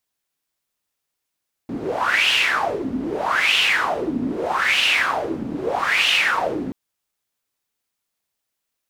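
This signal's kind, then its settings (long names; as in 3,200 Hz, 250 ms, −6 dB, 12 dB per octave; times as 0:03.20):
wind from filtered noise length 5.03 s, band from 250 Hz, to 2,900 Hz, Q 5.9, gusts 4, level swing 9 dB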